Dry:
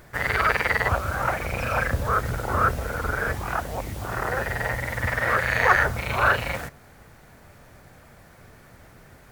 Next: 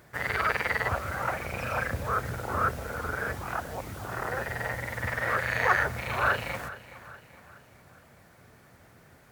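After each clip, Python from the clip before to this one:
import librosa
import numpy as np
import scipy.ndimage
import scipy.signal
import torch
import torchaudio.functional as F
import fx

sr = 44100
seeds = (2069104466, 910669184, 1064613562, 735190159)

y = scipy.signal.sosfilt(scipy.signal.butter(2, 74.0, 'highpass', fs=sr, output='sos'), x)
y = fx.echo_feedback(y, sr, ms=419, feedback_pct=47, wet_db=-16.5)
y = F.gain(torch.from_numpy(y), -5.5).numpy()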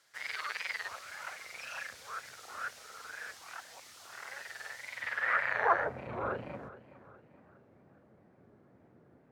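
y = fx.wow_flutter(x, sr, seeds[0], rate_hz=2.1, depth_cents=130.0)
y = fx.filter_sweep_bandpass(y, sr, from_hz=5100.0, to_hz=300.0, start_s=4.84, end_s=6.11, q=1.1)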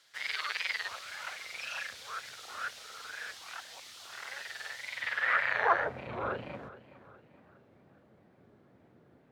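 y = fx.peak_eq(x, sr, hz=3500.0, db=8.5, octaves=1.1)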